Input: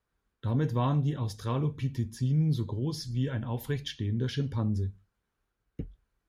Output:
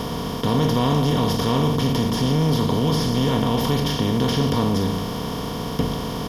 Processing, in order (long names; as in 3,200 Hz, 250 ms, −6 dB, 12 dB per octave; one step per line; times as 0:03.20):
compressor on every frequency bin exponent 0.2
notch filter 1,600 Hz, Q 9.4
comb filter 4.3 ms, depth 39%
in parallel at −1.5 dB: brickwall limiter −18.5 dBFS, peak gain reduction 7.5 dB